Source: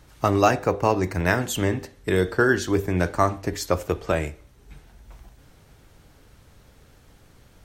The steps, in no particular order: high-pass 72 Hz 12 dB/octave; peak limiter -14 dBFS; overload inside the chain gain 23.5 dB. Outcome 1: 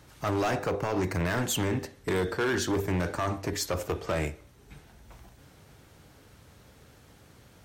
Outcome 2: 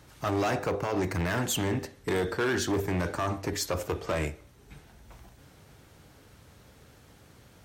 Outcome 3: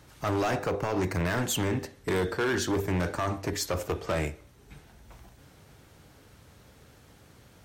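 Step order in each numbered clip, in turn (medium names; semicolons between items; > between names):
peak limiter > high-pass > overload inside the chain; peak limiter > overload inside the chain > high-pass; high-pass > peak limiter > overload inside the chain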